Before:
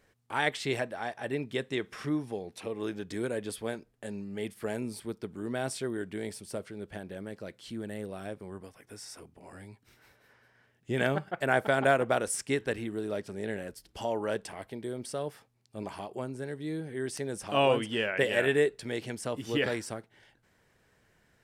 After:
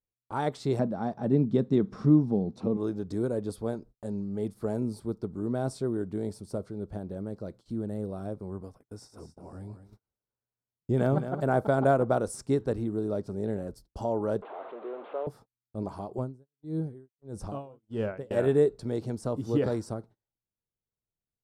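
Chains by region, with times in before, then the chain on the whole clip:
0.79–2.77 s: low-pass 5.9 kHz + peaking EQ 200 Hz +13 dB 1 oct
8.80–11.59 s: de-esser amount 85% + feedback delay 219 ms, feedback 16%, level -10 dB
14.42–15.27 s: one-bit delta coder 16 kbps, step -34 dBFS + high-pass 410 Hz 24 dB/octave
16.18–18.31 s: bass shelf 95 Hz +10.5 dB + logarithmic tremolo 1.6 Hz, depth 31 dB
whole clip: tilt EQ -2.5 dB/octave; gate -49 dBFS, range -34 dB; high-order bell 2.3 kHz -13 dB 1.2 oct

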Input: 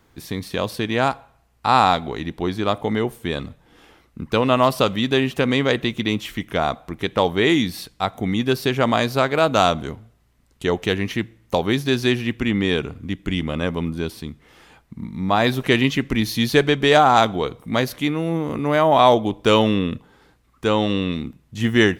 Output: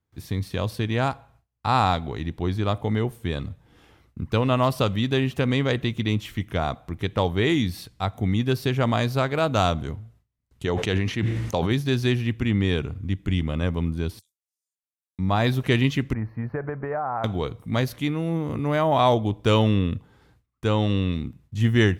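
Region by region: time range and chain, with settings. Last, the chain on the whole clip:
10.65–11.71 s: low-pass 8.6 kHz + bass shelf 110 Hz -10 dB + decay stretcher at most 39 dB/s
14.19–15.19 s: inverse Chebyshev high-pass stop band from 1.5 kHz, stop band 70 dB + treble shelf 10 kHz +3 dB
16.13–17.24 s: resonant low shelf 430 Hz -6 dB, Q 1.5 + compression 5:1, threshold -18 dBFS + inverse Chebyshev low-pass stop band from 3.2 kHz
whole clip: gate with hold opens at -47 dBFS; peaking EQ 94 Hz +13 dB 1.3 oct; trim -6 dB

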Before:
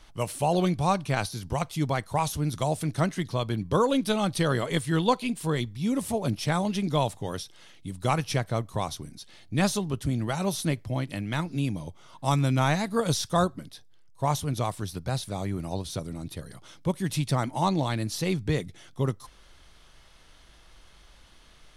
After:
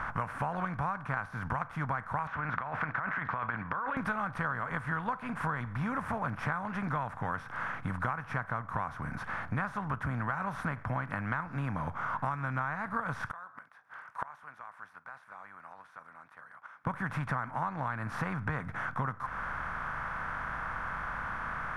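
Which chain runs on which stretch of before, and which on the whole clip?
2.27–3.97 s: low-pass 2.5 kHz 24 dB/octave + tilt EQ +4.5 dB/octave + compressor with a negative ratio -38 dBFS
13.31–16.87 s: high-pass 890 Hz + compression 10:1, threshold -37 dBFS + inverted gate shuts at -43 dBFS, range -32 dB
whole clip: spectral levelling over time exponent 0.6; FFT filter 120 Hz 0 dB, 240 Hz -4 dB, 360 Hz -13 dB, 1.5 kHz +14 dB, 3.8 kHz -21 dB; compression 12:1, threshold -30 dBFS

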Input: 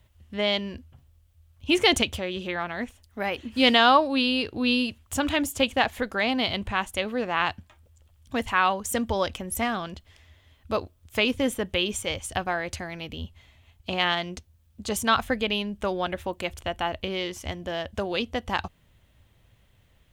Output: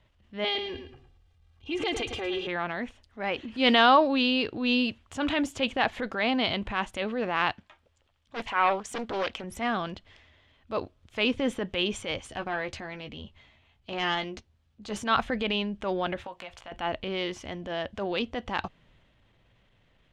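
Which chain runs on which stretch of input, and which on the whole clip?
0.44–2.47 s: comb 2.5 ms, depth 95% + compression, threshold -24 dBFS + feedback delay 109 ms, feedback 26%, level -10 dB
7.51–9.44 s: bass shelf 350 Hz -9 dB + loudspeaker Doppler distortion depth 0.96 ms
12.17–15.06 s: doubling 14 ms -8 dB + valve stage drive 13 dB, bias 0.55
16.24–16.72 s: resonant low shelf 510 Hz -9.5 dB, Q 1.5 + compression, threshold -34 dBFS + doubling 17 ms -10 dB
whole clip: low-pass 4.1 kHz 12 dB/octave; peaking EQ 74 Hz -11 dB 0.98 oct; transient shaper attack -7 dB, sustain +3 dB

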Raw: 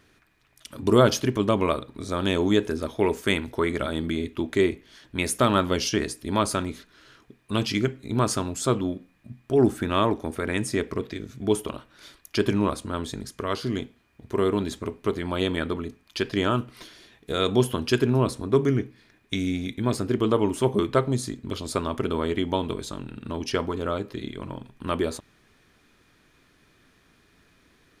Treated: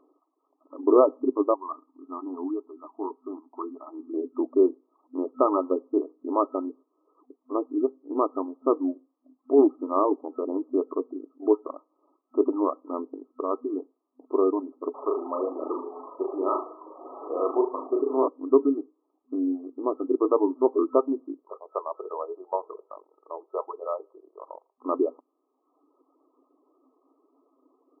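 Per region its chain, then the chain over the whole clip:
1.54–4.14 s: static phaser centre 2.6 kHz, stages 8 + upward compressor, threshold -38 dBFS + flange 1.8 Hz, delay 4.4 ms, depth 3.1 ms, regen -63%
14.94–18.28 s: one-bit delta coder 64 kbps, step -27.5 dBFS + high-pass 440 Hz + flutter echo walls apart 6.5 m, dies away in 0.74 s
21.42–24.86 s: Chebyshev band-stop 110–550 Hz + peaking EQ 2.5 kHz -5 dB 1.3 oct + hum notches 50/100/150/200/250/300/350/400/450/500 Hz
whole clip: reverb removal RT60 0.88 s; FFT band-pass 250–1300 Hz; bass shelf 360 Hz +5.5 dB

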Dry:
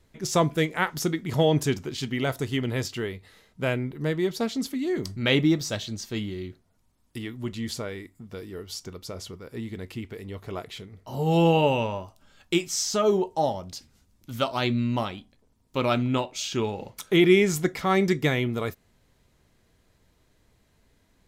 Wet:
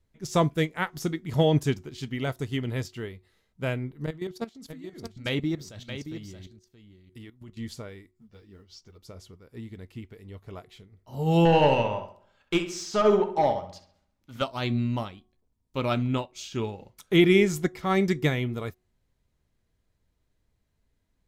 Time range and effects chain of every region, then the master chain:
4.06–7.57 s: level held to a coarse grid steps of 12 dB + delay 625 ms -6.5 dB
8.11–8.98 s: resonant high shelf 7.5 kHz -12.5 dB, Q 1.5 + short-mantissa float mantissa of 4-bit + three-phase chorus
11.45–14.42 s: overdrive pedal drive 13 dB, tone 2.1 kHz, clips at -10.5 dBFS + filtered feedback delay 66 ms, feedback 54%, low-pass 4 kHz, level -7 dB
whole clip: bass shelf 120 Hz +8.5 dB; de-hum 366.7 Hz, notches 3; upward expansion 1.5:1, over -43 dBFS

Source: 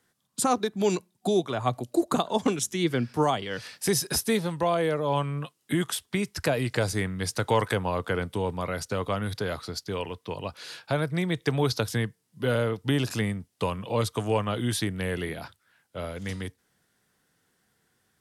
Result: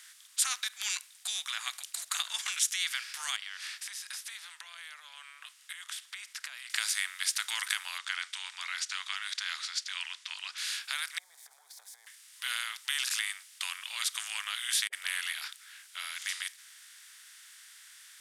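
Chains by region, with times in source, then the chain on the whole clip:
3.36–6.70 s: compression, threshold -38 dBFS + tilt EQ -3.5 dB/octave
7.98–10.58 s: low-pass 6.9 kHz 24 dB/octave + peaking EQ 560 Hz -12 dB 0.43 oct
11.18–12.07 s: zero-crossing glitches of -24.5 dBFS + elliptic low-pass 800 Hz + compressor with a negative ratio -32 dBFS
14.87–15.33 s: peaking EQ 290 Hz +9.5 dB 2.6 oct + phase dispersion highs, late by 59 ms, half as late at 430 Hz
whole clip: spectral levelling over time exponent 0.6; inverse Chebyshev high-pass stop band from 300 Hz, stop band 80 dB

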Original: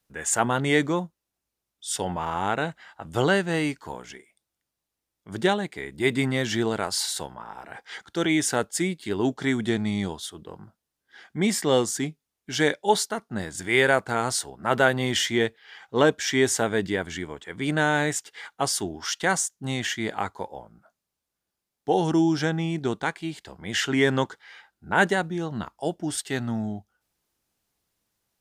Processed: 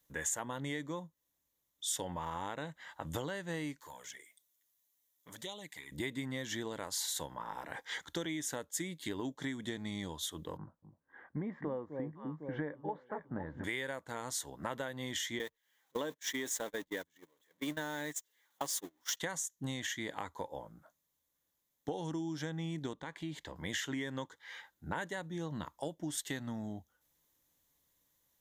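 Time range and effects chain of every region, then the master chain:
3.80–5.92 s: tilt EQ +2.5 dB/octave + compression 2.5:1, threshold -44 dBFS + touch-sensitive flanger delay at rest 11.1 ms, full sweep at -37 dBFS
10.57–13.64 s: low-pass 1.5 kHz 24 dB/octave + echo whose repeats swap between lows and highs 253 ms, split 820 Hz, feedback 53%, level -10 dB
15.39–19.17 s: jump at every zero crossing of -29 dBFS + high-pass 220 Hz + gate -26 dBFS, range -41 dB
22.93–23.56 s: low-pass 3.2 kHz 6 dB/octave + compression 2:1, threshold -38 dBFS
whole clip: rippled EQ curve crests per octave 1.1, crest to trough 7 dB; compression 12:1, threshold -33 dBFS; treble shelf 9.4 kHz +8.5 dB; trim -2.5 dB

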